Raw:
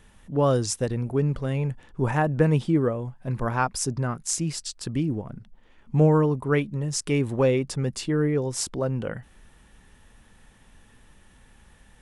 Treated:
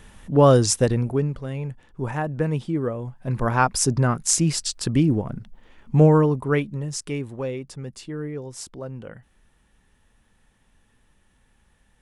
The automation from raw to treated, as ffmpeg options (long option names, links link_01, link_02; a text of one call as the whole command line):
ffmpeg -i in.wav -af "volume=17.5dB,afade=type=out:start_time=0.87:duration=0.46:silence=0.298538,afade=type=in:start_time=2.76:duration=1.2:silence=0.298538,afade=type=out:start_time=5.25:duration=1.53:silence=0.421697,afade=type=out:start_time=6.78:duration=0.54:silence=0.421697" out.wav